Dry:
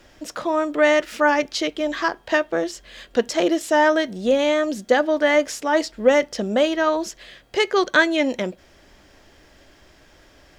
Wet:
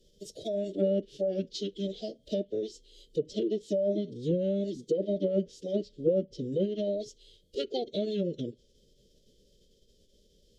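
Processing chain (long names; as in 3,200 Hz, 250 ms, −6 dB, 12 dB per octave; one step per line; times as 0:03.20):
elliptic band-stop filter 690–3,300 Hz, stop band 70 dB
phase-vocoder pitch shift with formants kept −7.5 semitones
treble cut that deepens with the level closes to 1,200 Hz, closed at −15.5 dBFS
level −8.5 dB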